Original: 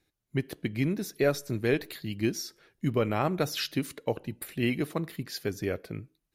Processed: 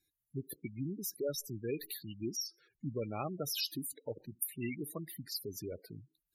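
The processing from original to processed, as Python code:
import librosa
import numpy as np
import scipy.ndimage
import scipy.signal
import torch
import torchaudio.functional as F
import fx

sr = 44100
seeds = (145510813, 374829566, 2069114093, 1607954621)

y = librosa.effects.preemphasis(x, coef=0.8, zi=[0.0])
y = fx.spec_gate(y, sr, threshold_db=-10, keep='strong')
y = y * 10.0 ** (3.5 / 20.0)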